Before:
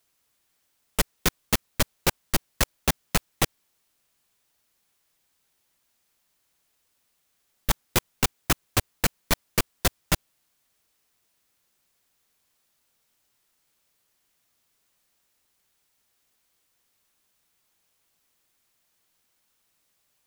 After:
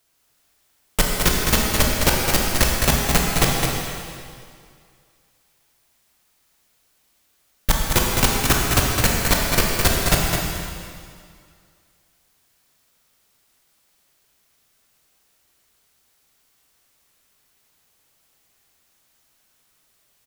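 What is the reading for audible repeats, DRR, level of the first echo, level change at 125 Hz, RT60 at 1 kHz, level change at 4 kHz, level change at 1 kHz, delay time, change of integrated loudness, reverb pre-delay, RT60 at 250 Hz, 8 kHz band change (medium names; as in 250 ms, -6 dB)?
1, -3.0 dB, -5.0 dB, +9.0 dB, 2.2 s, +8.0 dB, +8.5 dB, 211 ms, +7.5 dB, 18 ms, 2.2 s, +8.0 dB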